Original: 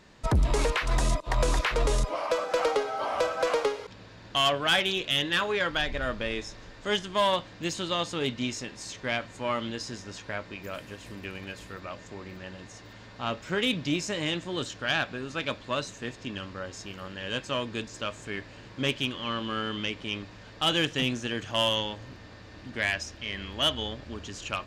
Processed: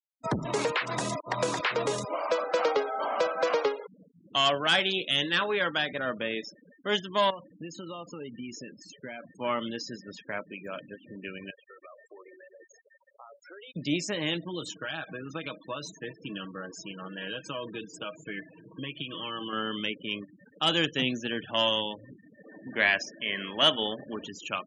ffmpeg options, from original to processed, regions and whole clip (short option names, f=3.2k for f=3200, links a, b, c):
-filter_complex "[0:a]asettb=1/sr,asplit=3[a][b][c];[a]atrim=end=7.304[d];[b]atrim=start=7.3:end=9.32,asetpts=PTS-STARTPTS,afade=t=in:d=0.004:c=qsin,afade=t=out:st=2.016:d=0.004:c=qsin,highshelf=f=3.8k:g=-6,bandreject=f=3.5k:w=6.9,acompressor=threshold=-34dB:ratio=16:attack=3.2:release=140:knee=1:detection=peak[e];[c]atrim=start=9.316[f];[d][e]acrossfade=d=0.004:c1=hsin:c2=qsin[g];[g][f]acrossfade=d=0.004:c1=qsin:c2=hsin,asettb=1/sr,asplit=3[h][i][j];[h]atrim=end=11.504[k];[i]atrim=start=11.5:end=13.76,asetpts=PTS-STARTPTS,afade=t=in:d=0.004:c=qsin,afade=t=out:st=2.256:d=0.004:c=qsin,highpass=f=360:w=0.5412,highpass=f=360:w=1.3066,acompressor=threshold=-42dB:ratio=10:attack=3.2:release=140:knee=1:detection=peak[l];[j]atrim=start=13.756[m];[k][l]acrossfade=d=0.004:c1=hsin:c2=qsin[n];[n][m]acrossfade=d=0.004:c1=qsin:c2=hsin,asettb=1/sr,asplit=3[o][p][q];[o]atrim=end=14.364[r];[p]atrim=start=14.36:end=19.53,asetpts=PTS-STARTPTS,afade=t=in:d=0.004:c=qsin,afade=t=out:st=5.166:d=0.004:c=qsin,acompressor=threshold=-31dB:ratio=16:attack=3.2:release=140:knee=1:detection=peak,aecho=1:1:6.3:0.58,atrim=end_sample=227997[s];[q]atrim=start=19.526[t];[r][s]acrossfade=d=0.004:c1=hsin:c2=qsin[u];[u][t]acrossfade=d=0.004:c1=qsin:c2=hsin,asettb=1/sr,asplit=3[v][w][x];[v]atrim=end=22.394[y];[w]atrim=start=22.39:end=24.28,asetpts=PTS-STARTPTS,afade=t=in:d=0.004:c=qsin,afade=t=out:st=1.886:d=0.004:c=qsin,bass=f=250:g=-4,treble=f=4k:g=-6,acontrast=23,bandreject=f=60:t=h:w=6,bandreject=f=120:t=h:w=6,bandreject=f=180:t=h:w=6,bandreject=f=240:t=h:w=6,bandreject=f=300:t=h:w=6,bandreject=f=360:t=h:w=6[z];[x]atrim=start=24.276[aa];[y][z]acrossfade=d=0.004:c1=hsin:c2=qsin[ab];[ab][aa]acrossfade=d=0.004:c1=qsin:c2=hsin,highpass=f=140:w=0.5412,highpass=f=140:w=1.3066,afftfilt=real='re*gte(hypot(re,im),0.0141)':imag='im*gte(hypot(re,im),0.0141)':win_size=1024:overlap=0.75"